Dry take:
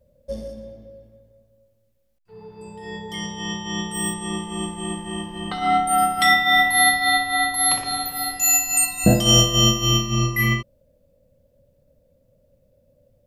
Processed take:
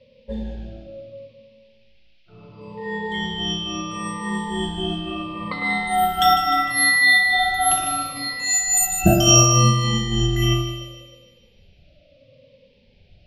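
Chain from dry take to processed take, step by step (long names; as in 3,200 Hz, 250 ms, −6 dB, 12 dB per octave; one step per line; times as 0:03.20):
rippled gain that drifts along the octave scale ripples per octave 0.96, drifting −0.72 Hz, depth 23 dB
noise in a band 2,400–5,300 Hz −54 dBFS
in parallel at +2 dB: downward compressor, threshold −28 dBFS, peak gain reduction 21 dB
on the sum: low-pass that shuts in the quiet parts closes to 1,500 Hz, open at −8 dBFS
on a send: echo with a time of its own for lows and highs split 2,400 Hz, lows 105 ms, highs 152 ms, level −8 dB
on the sum: level −6 dB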